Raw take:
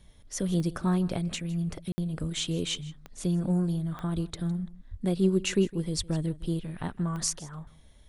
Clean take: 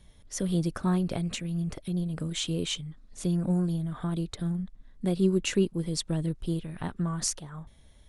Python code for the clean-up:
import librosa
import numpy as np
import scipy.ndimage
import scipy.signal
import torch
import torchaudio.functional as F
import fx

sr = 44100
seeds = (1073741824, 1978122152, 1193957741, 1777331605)

y = fx.fix_declick_ar(x, sr, threshold=10.0)
y = fx.fix_deplosive(y, sr, at_s=(2.2, 4.14, 4.9, 5.97))
y = fx.fix_ambience(y, sr, seeds[0], print_start_s=7.57, print_end_s=8.07, start_s=1.92, end_s=1.98)
y = fx.fix_echo_inverse(y, sr, delay_ms=159, level_db=-19.5)